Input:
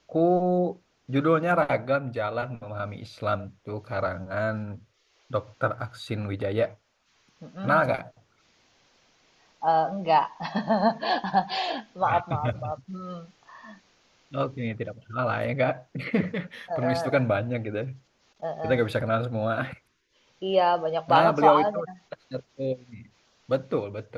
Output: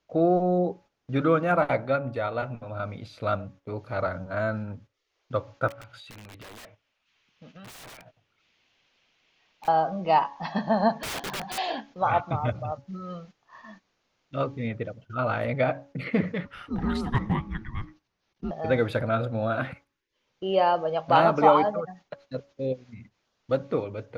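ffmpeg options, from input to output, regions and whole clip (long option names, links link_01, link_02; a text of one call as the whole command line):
ffmpeg -i in.wav -filter_complex "[0:a]asettb=1/sr,asplit=3[link_01][link_02][link_03];[link_01]atrim=end=5.684[link_04];[link_02]atrim=start=5.68:end=9.68,asetpts=PTS-STARTPTS,afade=type=in:duration=0.004:curve=qsin,afade=type=out:start_time=3.996:duration=0.004:curve=qsin,equalizer=frequency=2800:width_type=o:width=1.2:gain=11.5,aeval=exprs='(mod(13.3*val(0)+1,2)-1)/13.3':channel_layout=same,acompressor=threshold=-42dB:ratio=8:attack=3.2:release=140:knee=1:detection=peak[link_05];[link_03]atrim=start=9.676[link_06];[link_04][link_05]acrossfade=duration=0.004:curve1=hsin:curve2=qsin[link_07];[link_07][link_06]acrossfade=duration=0.004:curve1=qsin:curve2=hsin,asettb=1/sr,asplit=3[link_08][link_09][link_10];[link_08]atrim=end=11.024[link_11];[link_09]atrim=start=11.02:end=11.58,asetpts=PTS-STARTPTS,afade=type=in:duration=0.004:curve=qsin,afade=type=out:start_time=0.556:duration=0.004:curve=qsin,acompressor=threshold=-23dB:ratio=6:attack=3.2:release=140:knee=1:detection=peak,aeval=exprs='(mod(20*val(0)+1,2)-1)/20':channel_layout=same[link_12];[link_10]atrim=start=11.576[link_13];[link_11][link_12]acrossfade=duration=0.004:curve1=hsin:curve2=qsin[link_14];[link_14][link_13]acrossfade=duration=0.004:curve1=qsin:curve2=hsin,asettb=1/sr,asplit=3[link_15][link_16][link_17];[link_15]atrim=end=16.454[link_18];[link_16]atrim=start=16.45:end=18.51,asetpts=PTS-STARTPTS,afade=type=in:duration=0.004:curve=qsin,afade=type=out:start_time=2.056:duration=0.004:curve=qsin,highpass=330,afreqshift=-440,aeval=exprs='clip(val(0),-1,0.119)':channel_layout=same[link_19];[link_17]atrim=start=18.506[link_20];[link_18][link_19]acrossfade=duration=0.004:curve1=hsin:curve2=qsin[link_21];[link_21][link_20]acrossfade=duration=0.004:curve1=qsin:curve2=hsin,bandreject=frequency=280.8:width_type=h:width=4,bandreject=frequency=561.6:width_type=h:width=4,bandreject=frequency=842.4:width_type=h:width=4,bandreject=frequency=1123.2:width_type=h:width=4,agate=range=-10dB:threshold=-48dB:ratio=16:detection=peak,highshelf=frequency=4200:gain=-5.5" out.wav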